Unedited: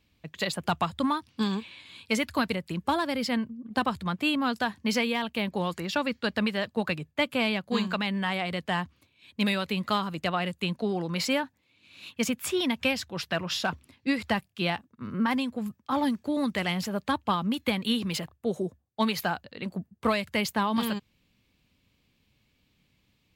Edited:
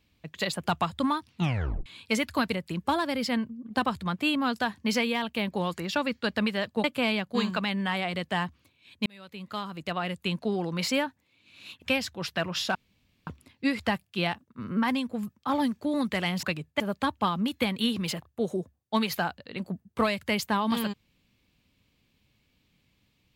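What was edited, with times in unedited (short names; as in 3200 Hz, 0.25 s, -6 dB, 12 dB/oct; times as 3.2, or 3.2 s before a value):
1.31 tape stop 0.55 s
6.84–7.21 move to 16.86
9.43–10.68 fade in
12.19–12.77 cut
13.7 insert room tone 0.52 s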